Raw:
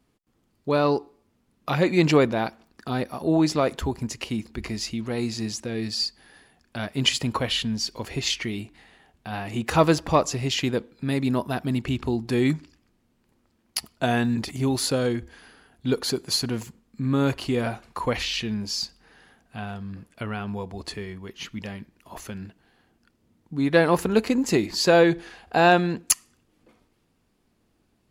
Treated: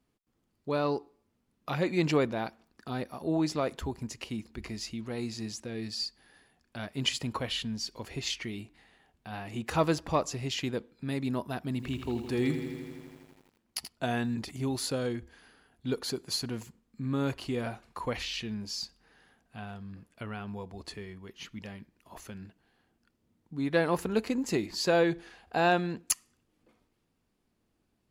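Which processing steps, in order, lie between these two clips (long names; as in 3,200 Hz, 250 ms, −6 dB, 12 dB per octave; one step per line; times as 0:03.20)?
0:11.71–0:13.89: feedback echo at a low word length 82 ms, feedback 80%, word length 8 bits, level −9 dB
level −8 dB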